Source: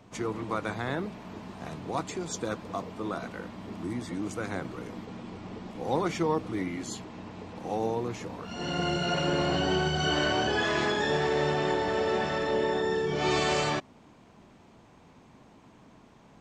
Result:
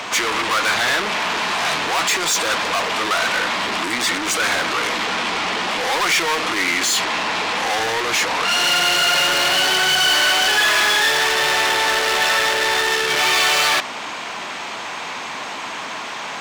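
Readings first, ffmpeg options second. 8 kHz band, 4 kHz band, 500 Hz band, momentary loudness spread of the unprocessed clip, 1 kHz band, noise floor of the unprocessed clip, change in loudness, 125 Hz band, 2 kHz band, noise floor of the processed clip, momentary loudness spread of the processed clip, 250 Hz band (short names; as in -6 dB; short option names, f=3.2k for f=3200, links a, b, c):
+21.0 dB, +18.5 dB, +4.0 dB, 14 LU, +12.5 dB, -56 dBFS, +13.0 dB, -5.0 dB, +17.5 dB, -29 dBFS, 13 LU, +0.5 dB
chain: -filter_complex "[0:a]asplit=2[a][b];[b]highpass=f=720:p=1,volume=38dB,asoftclip=type=tanh:threshold=-14dB[c];[a][c]amix=inputs=2:normalize=0,lowpass=f=3k:p=1,volume=-6dB,tiltshelf=f=800:g=-10"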